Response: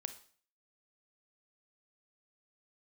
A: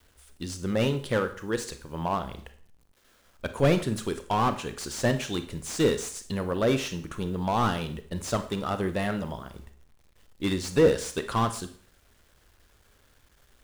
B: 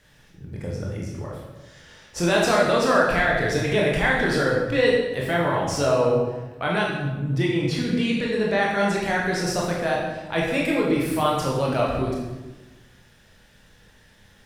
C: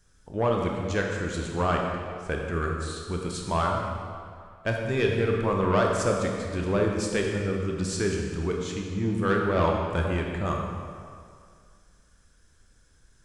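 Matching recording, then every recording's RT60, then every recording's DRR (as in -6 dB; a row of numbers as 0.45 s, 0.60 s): A; 0.45 s, 1.2 s, 2.2 s; 9.5 dB, -4.0 dB, 0.0 dB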